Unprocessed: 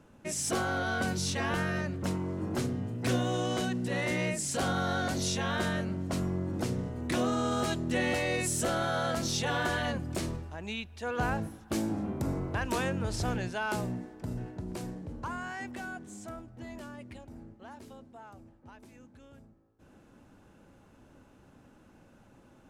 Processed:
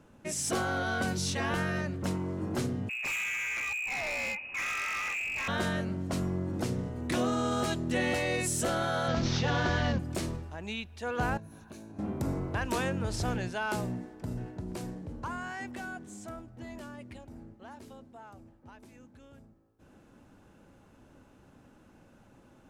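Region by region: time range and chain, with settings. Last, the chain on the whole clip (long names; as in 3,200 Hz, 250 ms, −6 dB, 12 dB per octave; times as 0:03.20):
0:02.89–0:05.48: voice inversion scrambler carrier 2,700 Hz + gain into a clipping stage and back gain 31 dB
0:09.08–0:09.99: variable-slope delta modulation 32 kbit/s + low-shelf EQ 190 Hz +9.5 dB
0:11.37–0:11.99: EQ curve with evenly spaced ripples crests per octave 1.5, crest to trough 8 dB + downward compressor 12 to 1, threshold −43 dBFS
whole clip: no processing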